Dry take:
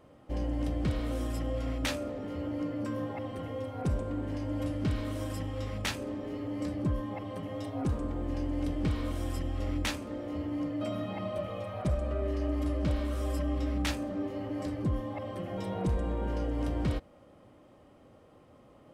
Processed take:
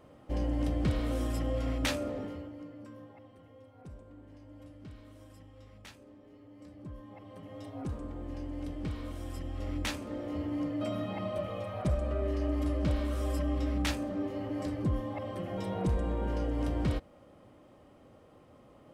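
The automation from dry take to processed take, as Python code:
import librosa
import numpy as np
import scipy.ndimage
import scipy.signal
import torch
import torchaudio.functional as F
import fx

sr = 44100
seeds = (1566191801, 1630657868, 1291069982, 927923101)

y = fx.gain(x, sr, db=fx.line((2.21, 1.0), (2.52, -11.0), (3.4, -18.0), (6.57, -18.0), (7.69, -6.5), (9.24, -6.5), (10.17, 0.0)))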